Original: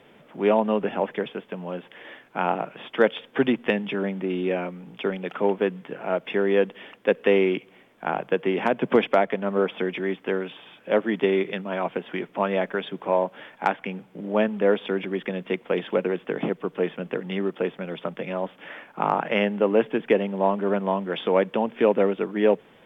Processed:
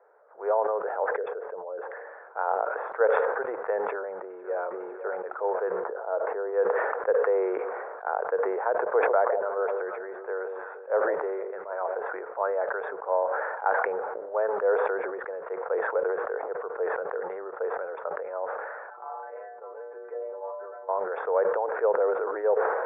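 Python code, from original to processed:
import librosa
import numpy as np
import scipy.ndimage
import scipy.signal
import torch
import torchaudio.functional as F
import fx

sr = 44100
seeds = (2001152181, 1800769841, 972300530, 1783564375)

y = fx.envelope_sharpen(x, sr, power=1.5, at=(1.16, 2.07))
y = fx.echo_throw(y, sr, start_s=3.79, length_s=0.86, ms=500, feedback_pct=40, wet_db=-9.5)
y = fx.lowpass(y, sr, hz=1300.0, slope=12, at=(5.8, 6.53))
y = fx.echo_alternate(y, sr, ms=157, hz=810.0, feedback_pct=59, wet_db=-12.0, at=(9.04, 11.99), fade=0.02)
y = fx.stiff_resonator(y, sr, f0_hz=87.0, decay_s=0.53, stiffness=0.008, at=(18.9, 20.89))
y = scipy.signal.sosfilt(scipy.signal.ellip(3, 1.0, 40, [460.0, 1500.0], 'bandpass', fs=sr, output='sos'), y)
y = fx.sustainer(y, sr, db_per_s=28.0)
y = F.gain(torch.from_numpy(y), -3.0).numpy()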